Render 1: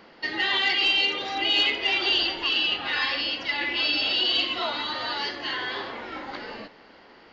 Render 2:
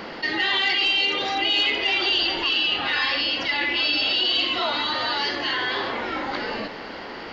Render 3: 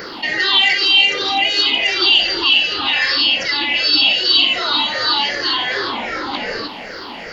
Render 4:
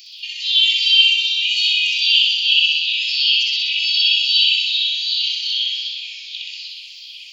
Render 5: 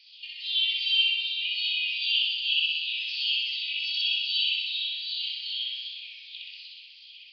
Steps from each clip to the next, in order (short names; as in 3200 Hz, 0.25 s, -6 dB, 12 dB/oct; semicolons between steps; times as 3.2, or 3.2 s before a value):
fast leveller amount 50%
moving spectral ripple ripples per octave 0.55, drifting -2.6 Hz, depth 13 dB; high shelf 4300 Hz +11.5 dB; gain +1.5 dB
rippled Chebyshev high-pass 2400 Hz, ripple 6 dB; on a send: flutter echo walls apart 10.8 m, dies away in 1.4 s
air absorption 150 m; downsampling 11025 Hz; gain -8 dB